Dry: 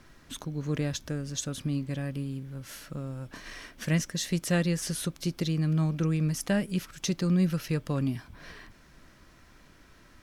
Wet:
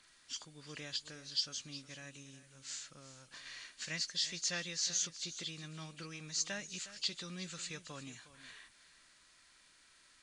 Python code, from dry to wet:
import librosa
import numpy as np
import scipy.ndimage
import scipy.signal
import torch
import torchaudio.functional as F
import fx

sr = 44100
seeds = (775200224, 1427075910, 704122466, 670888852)

y = fx.freq_compress(x, sr, knee_hz=2600.0, ratio=1.5)
y = librosa.effects.preemphasis(y, coef=0.97, zi=[0.0])
y = y + 10.0 ** (-15.0 / 20.0) * np.pad(y, (int(362 * sr / 1000.0), 0))[:len(y)]
y = y * 10.0 ** (5.0 / 20.0)